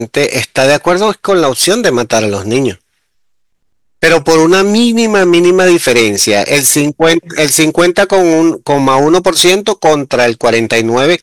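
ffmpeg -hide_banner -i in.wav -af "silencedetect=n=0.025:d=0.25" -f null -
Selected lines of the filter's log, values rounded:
silence_start: 2.75
silence_end: 4.02 | silence_duration: 1.27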